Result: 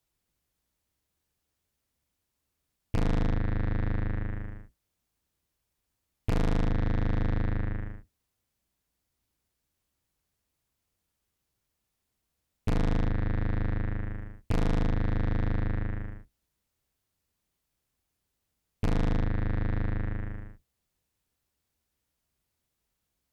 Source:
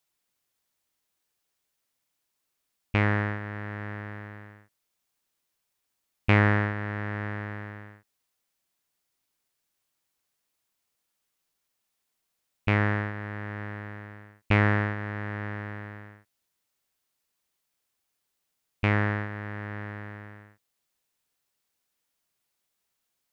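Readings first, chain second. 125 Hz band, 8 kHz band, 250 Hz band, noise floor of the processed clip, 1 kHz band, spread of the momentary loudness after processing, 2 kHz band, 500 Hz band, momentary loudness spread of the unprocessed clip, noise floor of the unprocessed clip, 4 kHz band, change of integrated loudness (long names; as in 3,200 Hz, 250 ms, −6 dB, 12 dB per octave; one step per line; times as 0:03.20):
−1.0 dB, can't be measured, −1.0 dB, −82 dBFS, −7.0 dB, 11 LU, −12.5 dB, −3.5 dB, 19 LU, −80 dBFS, −4.0 dB, −3.0 dB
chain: sub-octave generator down 2 octaves, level +4 dB
low-shelf EQ 460 Hz +10.5 dB
tube saturation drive 23 dB, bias 0.6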